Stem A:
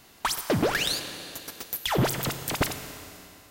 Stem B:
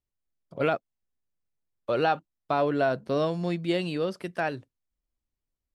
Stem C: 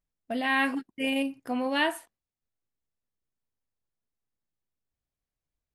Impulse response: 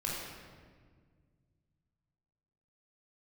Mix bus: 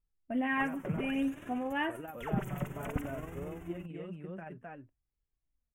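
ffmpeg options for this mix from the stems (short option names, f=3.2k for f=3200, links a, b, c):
-filter_complex "[0:a]adelay=350,volume=2dB[a];[1:a]volume=-12dB,asplit=2[b][c];[c]volume=-4dB[d];[2:a]volume=-3dB,asplit=2[e][f];[f]apad=whole_len=170116[g];[a][g]sidechaincompress=threshold=-38dB:ratio=8:attack=44:release=659[h];[h][b]amix=inputs=2:normalize=0,tremolo=f=21:d=0.462,acompressor=threshold=-39dB:ratio=2,volume=0dB[i];[d]aecho=0:1:259:1[j];[e][i][j]amix=inputs=3:normalize=0,bass=f=250:g=10,treble=f=4k:g=-10,flanger=delay=2.3:depth=3.1:regen=33:speed=0.58:shape=sinusoidal,asuperstop=centerf=4400:order=4:qfactor=1.1"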